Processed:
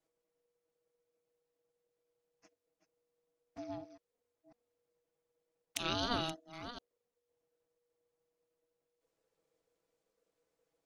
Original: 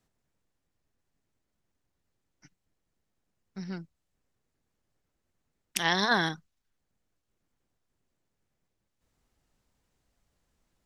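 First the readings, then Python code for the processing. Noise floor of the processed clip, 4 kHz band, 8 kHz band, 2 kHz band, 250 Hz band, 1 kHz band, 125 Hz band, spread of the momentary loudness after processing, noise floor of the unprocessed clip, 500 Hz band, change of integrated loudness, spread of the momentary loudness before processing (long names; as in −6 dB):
below −85 dBFS, −7.0 dB, −8.5 dB, −16.0 dB, −7.5 dB, −9.5 dB, −8.5 dB, 19 LU, −81 dBFS, −6.5 dB, −11.0 dB, 19 LU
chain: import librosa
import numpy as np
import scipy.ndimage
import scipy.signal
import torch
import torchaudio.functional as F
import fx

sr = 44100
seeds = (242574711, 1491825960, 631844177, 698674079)

y = fx.reverse_delay(x, sr, ms=377, wet_db=-11.0)
y = fx.env_flanger(y, sr, rest_ms=6.2, full_db=-33.5)
y = y * np.sin(2.0 * np.pi * 480.0 * np.arange(len(y)) / sr)
y = y * 10.0 ** (-3.0 / 20.0)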